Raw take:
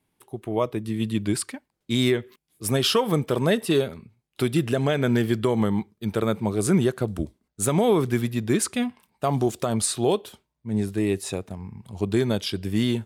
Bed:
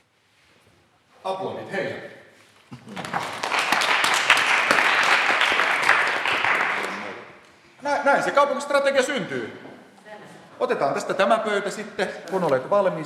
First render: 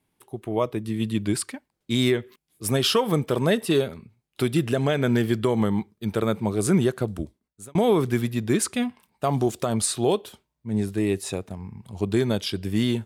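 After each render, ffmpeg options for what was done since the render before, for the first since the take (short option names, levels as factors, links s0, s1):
-filter_complex "[0:a]asplit=2[s0][s1];[s0]atrim=end=7.75,asetpts=PTS-STARTPTS,afade=t=out:st=7.01:d=0.74[s2];[s1]atrim=start=7.75,asetpts=PTS-STARTPTS,afade=t=in:d=0.004:c=hsin[s3];[s2][s3]concat=n=2:v=0:a=1"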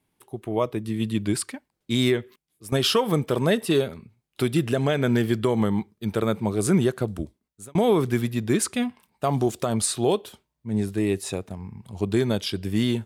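-filter_complex "[0:a]asplit=2[s0][s1];[s0]atrim=end=2.72,asetpts=PTS-STARTPTS,afade=t=out:st=2.2:d=0.52:silence=0.158489[s2];[s1]atrim=start=2.72,asetpts=PTS-STARTPTS,afade=t=in:d=0.004:c=hsin:silence=0.158489[s3];[s2][s3]concat=n=2:v=0:a=1"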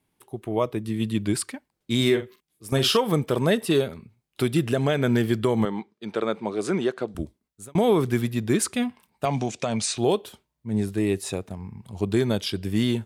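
-filter_complex "[0:a]asettb=1/sr,asplit=3[s0][s1][s2];[s0]atrim=end=1.964[s3];[s1]atrim=start=1.96:end=2.97,asetpts=PTS-STARTPTS,afade=t=in:d=0.004:c=qsin,afade=t=out:st=1.006:d=0.004:c=qsin,asplit=2[s4][s5];[s5]adelay=45,volume=0.355[s6];[s4][s6]amix=inputs=2:normalize=0,atrim=end_sample=44541[s7];[s2]atrim=start=2.966[s8];[s3][s7]acrossfade=d=0.004:c1=hsin:c2=qsin[s9];[s9][s8]acrossfade=d=0.004:c1=qsin:c2=hsin,asettb=1/sr,asplit=3[s10][s11][s12];[s10]atrim=end=5.654[s13];[s11]atrim=start=5.65:end=7.15,asetpts=PTS-STARTPTS,afade=t=in:d=0.004:c=qsin,afade=t=out:st=1.496:d=0.004:c=qsin,highpass=290,lowpass=5200[s14];[s12]atrim=start=7.146[s15];[s13][s14]acrossfade=d=0.004:c1=hsin:c2=qsin[s16];[s16][s15]acrossfade=d=0.004:c1=qsin:c2=hsin,asettb=1/sr,asplit=3[s17][s18][s19];[s17]atrim=end=9.254[s20];[s18]atrim=start=9.25:end=9.98,asetpts=PTS-STARTPTS,afade=t=in:d=0.004:c=qsin,afade=t=out:st=0.726:d=0.004:c=qsin,highpass=120,equalizer=f=360:t=q:w=4:g=-9,equalizer=f=1200:t=q:w=4:g=-5,equalizer=f=2400:t=q:w=4:g=10,equalizer=f=6000:t=q:w=4:g=6,lowpass=f=7800:w=0.5412,lowpass=f=7800:w=1.3066[s21];[s19]atrim=start=9.976[s22];[s20][s21]acrossfade=d=0.004:c1=hsin:c2=qsin[s23];[s23][s22]acrossfade=d=0.004:c1=qsin:c2=hsin"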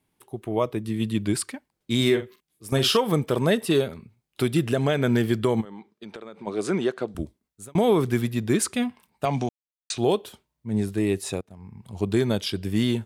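-filter_complex "[0:a]asplit=3[s0][s1][s2];[s0]afade=t=out:st=5.6:d=0.02[s3];[s1]acompressor=threshold=0.0178:ratio=10:attack=3.2:release=140:knee=1:detection=peak,afade=t=in:st=5.6:d=0.02,afade=t=out:st=6.46:d=0.02[s4];[s2]afade=t=in:st=6.46:d=0.02[s5];[s3][s4][s5]amix=inputs=3:normalize=0,asplit=4[s6][s7][s8][s9];[s6]atrim=end=9.49,asetpts=PTS-STARTPTS,afade=t=out:st=9.486:d=0.004:c=hsin[s10];[s7]atrim=start=9.49:end=9.9,asetpts=PTS-STARTPTS,volume=0[s11];[s8]atrim=start=9.9:end=11.41,asetpts=PTS-STARTPTS,afade=t=in:d=0.004:c=hsin,afade=t=out:st=1.506:d=0.004:c=hsin:silence=0.0794328[s12];[s9]atrim=start=11.41,asetpts=PTS-STARTPTS,afade=t=in:d=0.51:silence=0.0794328[s13];[s10][s11][s12][s13]concat=n=4:v=0:a=1"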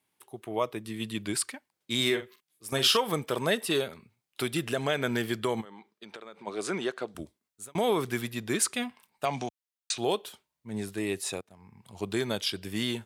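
-af "highpass=77,lowshelf=f=480:g=-12"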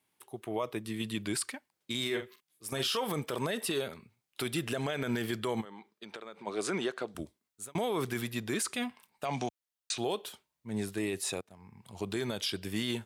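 -af "alimiter=limit=0.075:level=0:latency=1:release=33"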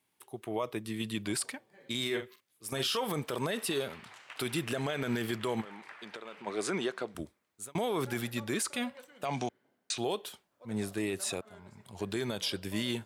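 -filter_complex "[1:a]volume=0.0237[s0];[0:a][s0]amix=inputs=2:normalize=0"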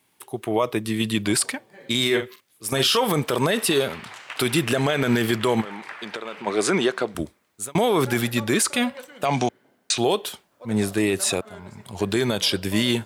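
-af "volume=3.98"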